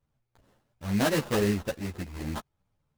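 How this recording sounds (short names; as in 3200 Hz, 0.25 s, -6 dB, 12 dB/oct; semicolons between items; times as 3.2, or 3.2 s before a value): aliases and images of a low sample rate 2300 Hz, jitter 20%; a shimmering, thickened sound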